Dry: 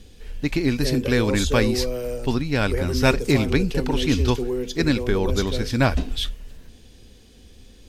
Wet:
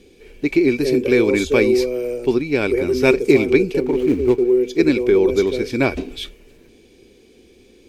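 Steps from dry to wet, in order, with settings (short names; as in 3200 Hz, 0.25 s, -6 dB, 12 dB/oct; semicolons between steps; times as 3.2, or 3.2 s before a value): 3.8–4.54 median filter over 25 samples; low shelf 89 Hz -11 dB; small resonant body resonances 370/2300 Hz, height 16 dB, ringing for 25 ms; gain -3.5 dB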